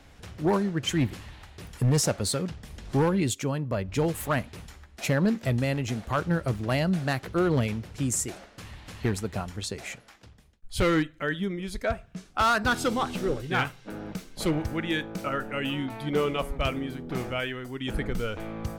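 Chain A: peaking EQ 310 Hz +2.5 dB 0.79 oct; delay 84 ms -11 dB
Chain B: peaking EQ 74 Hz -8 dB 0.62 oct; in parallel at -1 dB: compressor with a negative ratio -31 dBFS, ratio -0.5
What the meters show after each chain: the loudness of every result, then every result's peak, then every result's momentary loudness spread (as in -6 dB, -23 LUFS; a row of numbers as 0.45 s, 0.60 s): -27.5 LUFS, -26.0 LUFS; -13.5 dBFS, -10.0 dBFS; 14 LU, 9 LU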